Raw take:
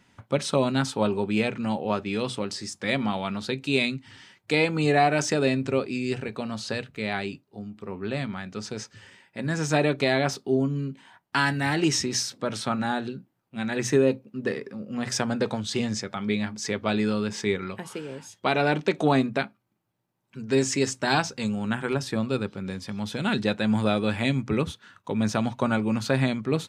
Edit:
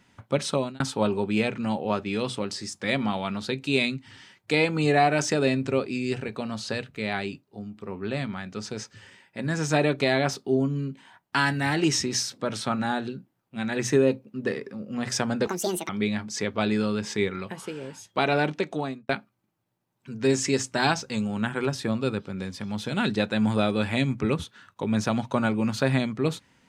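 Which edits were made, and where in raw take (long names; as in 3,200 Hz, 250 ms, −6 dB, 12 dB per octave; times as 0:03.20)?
0:00.49–0:00.80: fade out
0:15.47–0:16.17: play speed 166%
0:18.63–0:19.37: fade out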